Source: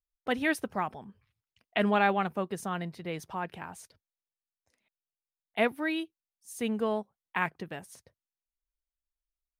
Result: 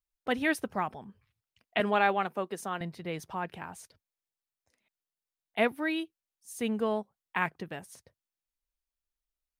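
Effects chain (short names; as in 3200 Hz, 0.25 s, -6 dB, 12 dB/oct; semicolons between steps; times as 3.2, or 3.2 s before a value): 1.8–2.81 HPF 260 Hz 12 dB/oct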